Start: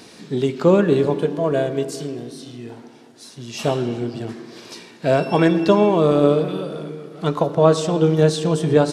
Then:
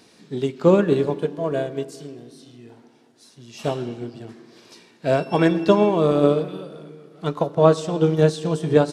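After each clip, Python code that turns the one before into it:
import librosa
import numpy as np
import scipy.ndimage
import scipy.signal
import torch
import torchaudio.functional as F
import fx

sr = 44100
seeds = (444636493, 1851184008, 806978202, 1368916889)

y = fx.upward_expand(x, sr, threshold_db=-29.0, expansion=1.5)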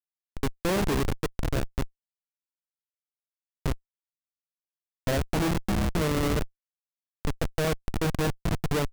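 y = fx.spec_erase(x, sr, start_s=5.55, length_s=0.4, low_hz=370.0, high_hz=2300.0)
y = fx.schmitt(y, sr, flips_db=-18.0)
y = y * 10.0 ** (-2.5 / 20.0)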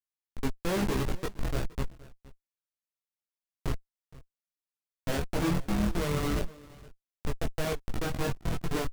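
y = x + 10.0 ** (-21.0 / 20.0) * np.pad(x, (int(468 * sr / 1000.0), 0))[:len(x)]
y = fx.chorus_voices(y, sr, voices=6, hz=0.38, base_ms=19, depth_ms=4.9, mix_pct=45)
y = y * 10.0 ** (-1.0 / 20.0)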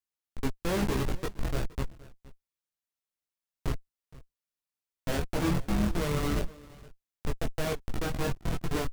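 y = fx.octave_divider(x, sr, octaves=2, level_db=-6.0)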